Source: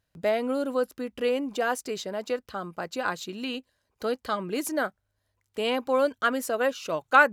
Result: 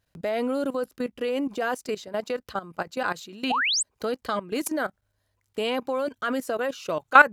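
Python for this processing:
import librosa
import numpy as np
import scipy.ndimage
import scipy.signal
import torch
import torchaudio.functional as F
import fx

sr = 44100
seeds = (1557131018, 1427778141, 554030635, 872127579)

y = fx.level_steps(x, sr, step_db=16)
y = fx.spec_paint(y, sr, seeds[0], shape='rise', start_s=3.5, length_s=0.33, low_hz=670.0, high_hz=8900.0, level_db=-30.0)
y = y * 10.0 ** (6.0 / 20.0)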